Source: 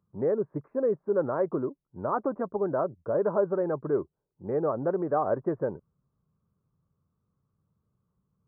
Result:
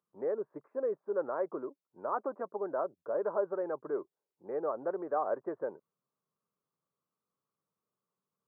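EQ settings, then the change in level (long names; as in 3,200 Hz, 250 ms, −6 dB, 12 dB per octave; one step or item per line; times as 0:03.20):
high-pass filter 420 Hz 12 dB per octave
−4.5 dB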